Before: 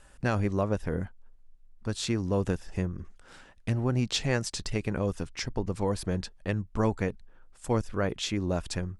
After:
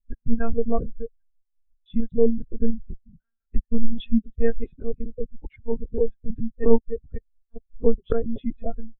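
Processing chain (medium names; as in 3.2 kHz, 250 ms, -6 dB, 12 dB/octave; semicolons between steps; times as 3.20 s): slices played last to first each 133 ms, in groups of 2; monotone LPC vocoder at 8 kHz 230 Hz; spectral contrast expander 2.5:1; trim +3.5 dB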